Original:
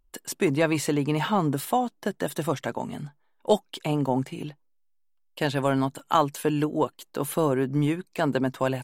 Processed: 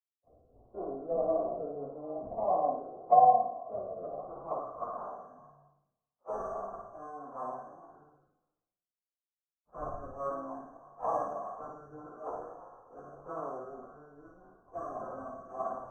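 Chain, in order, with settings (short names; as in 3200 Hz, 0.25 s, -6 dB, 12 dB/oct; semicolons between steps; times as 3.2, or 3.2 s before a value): spectral trails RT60 0.92 s; vowel filter a; sample-rate reducer 1800 Hz, jitter 0%; low-pass sweep 630 Hz -> 2000 Hz, 2.13–3.09; FFT band-reject 1800–5300 Hz; in parallel at -1 dB: compressor 5:1, threshold -35 dBFS, peak gain reduction 15 dB; on the sum: LFO notch sine 3 Hz 840–3900 Hz; plain phase-vocoder stretch 1.8×; tilt -1.5 dB/oct; on a send: flutter echo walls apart 9.6 m, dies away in 0.68 s; on the sum: three-band expander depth 70%; gain -7.5 dB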